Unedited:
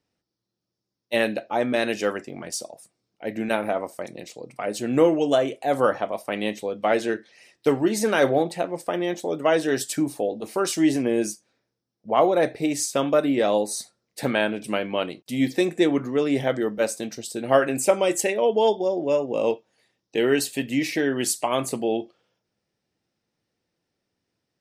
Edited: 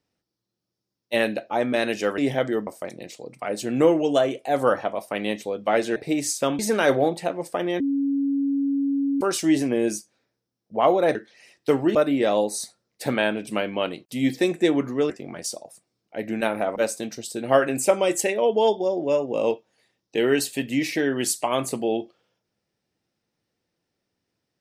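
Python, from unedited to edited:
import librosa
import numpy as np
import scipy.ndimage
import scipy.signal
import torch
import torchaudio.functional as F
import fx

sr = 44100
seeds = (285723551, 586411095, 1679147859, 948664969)

y = fx.edit(x, sr, fx.swap(start_s=2.18, length_s=1.66, other_s=16.27, other_length_s=0.49),
    fx.swap(start_s=7.13, length_s=0.8, other_s=12.49, other_length_s=0.63),
    fx.bleep(start_s=9.14, length_s=1.41, hz=278.0, db=-20.0), tone=tone)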